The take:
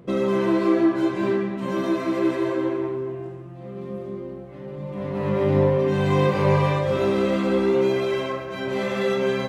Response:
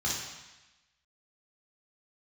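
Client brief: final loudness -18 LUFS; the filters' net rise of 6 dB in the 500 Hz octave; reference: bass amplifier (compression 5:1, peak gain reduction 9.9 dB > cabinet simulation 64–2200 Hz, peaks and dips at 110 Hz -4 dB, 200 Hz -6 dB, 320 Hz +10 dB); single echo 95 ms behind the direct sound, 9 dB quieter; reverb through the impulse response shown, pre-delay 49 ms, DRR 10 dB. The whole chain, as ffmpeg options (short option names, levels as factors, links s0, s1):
-filter_complex "[0:a]equalizer=f=500:t=o:g=4.5,aecho=1:1:95:0.355,asplit=2[s0][s1];[1:a]atrim=start_sample=2205,adelay=49[s2];[s1][s2]afir=irnorm=-1:irlink=0,volume=0.133[s3];[s0][s3]amix=inputs=2:normalize=0,acompressor=threshold=0.0891:ratio=5,highpass=f=64:w=0.5412,highpass=f=64:w=1.3066,equalizer=f=110:t=q:w=4:g=-4,equalizer=f=200:t=q:w=4:g=-6,equalizer=f=320:t=q:w=4:g=10,lowpass=f=2200:w=0.5412,lowpass=f=2200:w=1.3066,volume=1.5"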